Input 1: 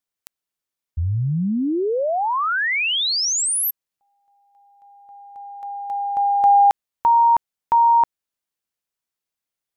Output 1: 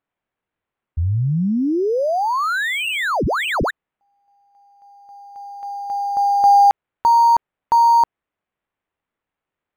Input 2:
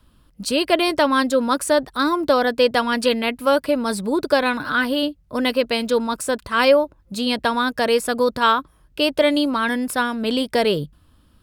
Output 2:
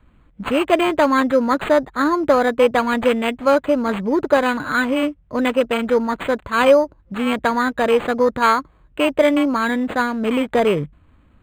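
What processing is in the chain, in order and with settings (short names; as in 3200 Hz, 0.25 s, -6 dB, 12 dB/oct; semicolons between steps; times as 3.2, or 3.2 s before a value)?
decimation joined by straight lines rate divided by 8×; gain +2.5 dB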